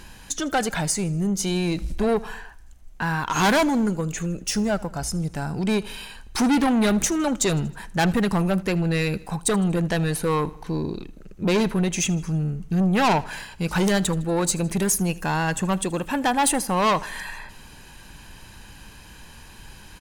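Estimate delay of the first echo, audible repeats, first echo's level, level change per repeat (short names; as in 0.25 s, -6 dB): 79 ms, 3, -21.5 dB, -5.5 dB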